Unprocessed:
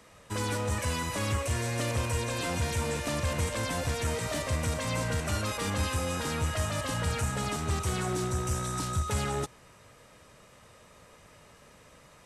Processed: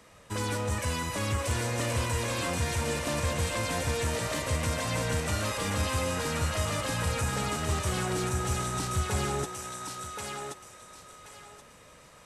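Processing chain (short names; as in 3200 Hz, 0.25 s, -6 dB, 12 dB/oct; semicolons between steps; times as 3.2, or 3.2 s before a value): thinning echo 1.077 s, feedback 27%, high-pass 500 Hz, level -3 dB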